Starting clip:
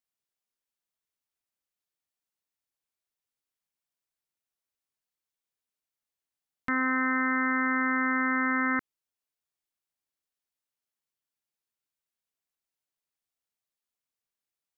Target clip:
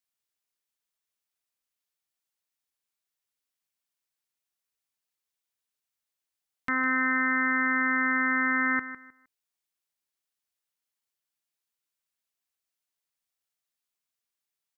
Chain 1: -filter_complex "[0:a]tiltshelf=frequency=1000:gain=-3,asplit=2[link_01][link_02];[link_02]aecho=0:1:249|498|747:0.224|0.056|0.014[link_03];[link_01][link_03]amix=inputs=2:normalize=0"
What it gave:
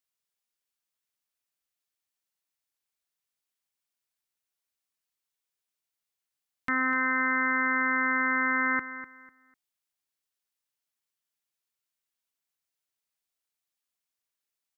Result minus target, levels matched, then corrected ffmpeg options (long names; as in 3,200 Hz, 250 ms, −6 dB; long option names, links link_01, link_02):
echo 94 ms late
-filter_complex "[0:a]tiltshelf=frequency=1000:gain=-3,asplit=2[link_01][link_02];[link_02]aecho=0:1:155|310|465:0.224|0.056|0.014[link_03];[link_01][link_03]amix=inputs=2:normalize=0"